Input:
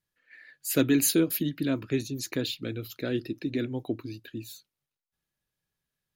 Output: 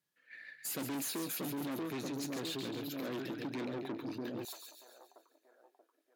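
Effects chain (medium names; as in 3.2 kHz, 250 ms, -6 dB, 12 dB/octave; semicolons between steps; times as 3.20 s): two-band feedback delay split 1.1 kHz, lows 632 ms, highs 137 ms, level -7 dB; dynamic bell 830 Hz, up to +5 dB, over -46 dBFS, Q 1.2; valve stage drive 34 dB, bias 0.45; compression, threshold -38 dBFS, peak gain reduction 4.5 dB; high-pass 140 Hz 24 dB/octave, from 4.45 s 700 Hz; trim +1.5 dB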